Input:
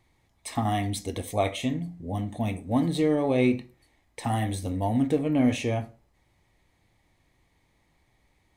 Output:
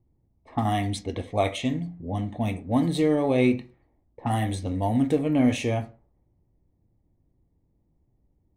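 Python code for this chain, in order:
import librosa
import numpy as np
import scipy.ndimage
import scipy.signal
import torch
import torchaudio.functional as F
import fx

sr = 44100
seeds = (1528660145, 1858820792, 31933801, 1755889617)

y = fx.env_lowpass(x, sr, base_hz=340.0, full_db=-24.0)
y = fx.high_shelf(y, sr, hz=7400.0, db=-11.0, at=(3.53, 4.31))
y = y * librosa.db_to_amplitude(1.5)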